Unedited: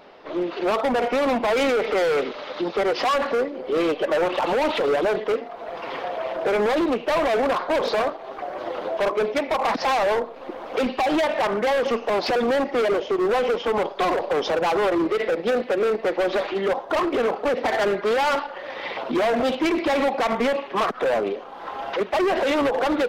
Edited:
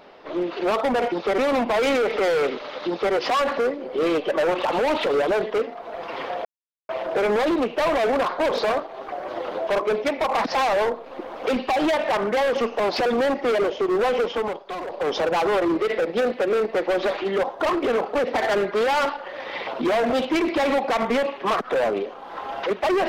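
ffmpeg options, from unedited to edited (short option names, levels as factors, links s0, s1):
-filter_complex "[0:a]asplit=6[s0][s1][s2][s3][s4][s5];[s0]atrim=end=1.122[s6];[s1]atrim=start=2.618:end=2.882[s7];[s2]atrim=start=1.118:end=6.19,asetpts=PTS-STARTPTS,afade=t=out:st=5.068:d=0.004:c=hsin,apad=pad_dur=0.44[s8];[s3]atrim=start=6.19:end=13.89,asetpts=PTS-STARTPTS,afade=t=in:d=0.004:c=hsin,afade=t=out:st=7.42:d=0.28:silence=0.334965[s9];[s4]atrim=start=13.89:end=14.15,asetpts=PTS-STARTPTS,volume=0.335[s10];[s5]atrim=start=14.15,asetpts=PTS-STARTPTS,afade=t=in:d=0.28:silence=0.334965[s11];[s6][s7]acrossfade=d=0.004:c1=hsin:c2=hsin[s12];[s8][s9][s10][s11]concat=n=4:v=0:a=1[s13];[s12][s13]acrossfade=d=0.004:c1=hsin:c2=hsin"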